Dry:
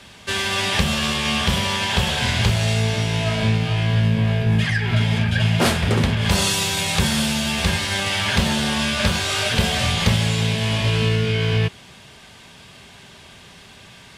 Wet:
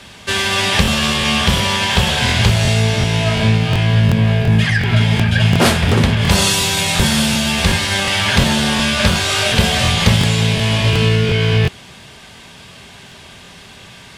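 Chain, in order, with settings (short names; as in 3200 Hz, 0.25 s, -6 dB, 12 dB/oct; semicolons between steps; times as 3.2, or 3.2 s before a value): crackling interface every 0.36 s, samples 1024, repeat, from 0.83; gain +5.5 dB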